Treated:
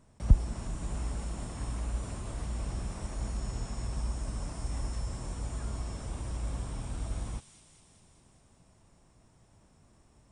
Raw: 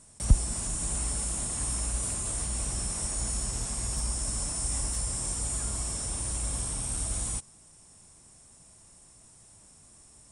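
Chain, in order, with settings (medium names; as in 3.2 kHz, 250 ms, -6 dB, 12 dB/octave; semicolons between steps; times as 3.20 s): tape spacing loss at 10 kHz 26 dB; feedback echo behind a high-pass 202 ms, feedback 69%, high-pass 3.1 kHz, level -6 dB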